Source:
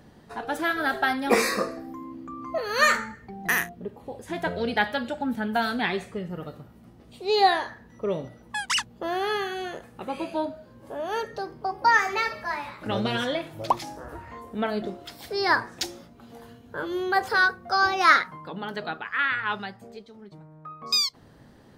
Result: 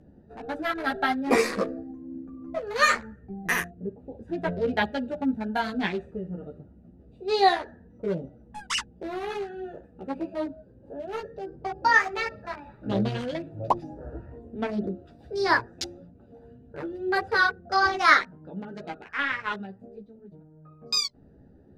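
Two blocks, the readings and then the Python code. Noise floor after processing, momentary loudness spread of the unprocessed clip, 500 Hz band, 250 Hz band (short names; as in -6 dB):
-54 dBFS, 18 LU, -1.0 dB, +0.5 dB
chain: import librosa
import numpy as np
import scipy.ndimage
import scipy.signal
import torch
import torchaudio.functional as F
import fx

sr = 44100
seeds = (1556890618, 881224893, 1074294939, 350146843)

y = fx.wiener(x, sr, points=41)
y = fx.chorus_voices(y, sr, voices=4, hz=0.8, base_ms=13, depth_ms=2.6, mix_pct=45)
y = scipy.signal.sosfilt(scipy.signal.butter(2, 11000.0, 'lowpass', fs=sr, output='sos'), y)
y = y * 10.0 ** (3.5 / 20.0)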